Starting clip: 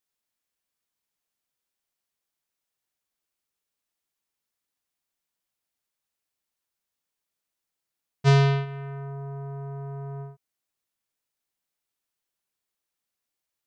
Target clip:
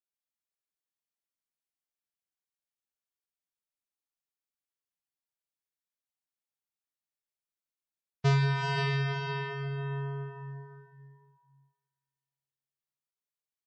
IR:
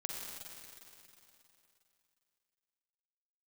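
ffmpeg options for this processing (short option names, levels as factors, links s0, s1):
-filter_complex "[0:a]asplit=2[s0][s1];[s1]adelay=510,lowpass=f=3500:p=1,volume=0.316,asplit=2[s2][s3];[s3]adelay=510,lowpass=f=3500:p=1,volume=0.27,asplit=2[s4][s5];[s5]adelay=510,lowpass=f=3500:p=1,volume=0.27[s6];[s0][s2][s4][s6]amix=inputs=4:normalize=0[s7];[1:a]atrim=start_sample=2205[s8];[s7][s8]afir=irnorm=-1:irlink=0,acompressor=threshold=0.0355:ratio=4,afftdn=nr=18:nf=-55,volume=1.58"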